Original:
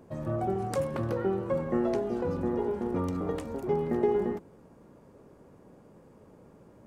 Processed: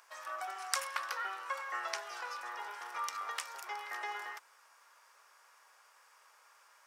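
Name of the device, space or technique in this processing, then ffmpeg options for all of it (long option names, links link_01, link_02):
headphones lying on a table: -af "highpass=frequency=1200:width=0.5412,highpass=frequency=1200:width=1.3066,equalizer=frequency=5400:width_type=o:width=0.36:gain=6.5,volume=8dB"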